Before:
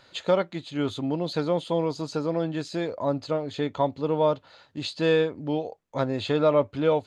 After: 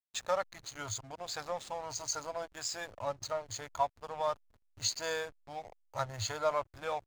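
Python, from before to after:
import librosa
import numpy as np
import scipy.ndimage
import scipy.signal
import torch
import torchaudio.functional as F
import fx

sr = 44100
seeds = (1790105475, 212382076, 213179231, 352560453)

y = fx.spec_ripple(x, sr, per_octave=1.8, drift_hz=0.73, depth_db=8)
y = fx.curve_eq(y, sr, hz=(110.0, 160.0, 280.0, 400.0, 670.0, 1700.0, 3200.0, 7000.0, 10000.0), db=(0, -29, -26, -26, -6, -3, -11, 14, -6))
y = fx.backlash(y, sr, play_db=-39.0)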